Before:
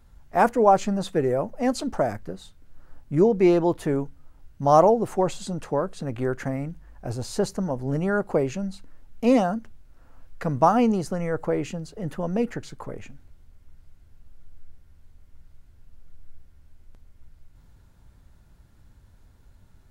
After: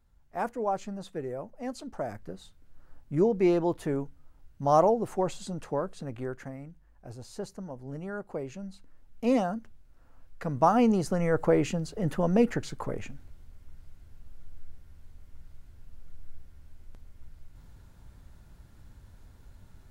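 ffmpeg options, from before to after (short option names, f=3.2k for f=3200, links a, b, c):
-af "volume=9.5dB,afade=t=in:st=1.93:d=0.41:silence=0.446684,afade=t=out:st=5.87:d=0.67:silence=0.421697,afade=t=in:st=8.37:d=0.96:silence=0.446684,afade=t=in:st=10.5:d=0.96:silence=0.398107"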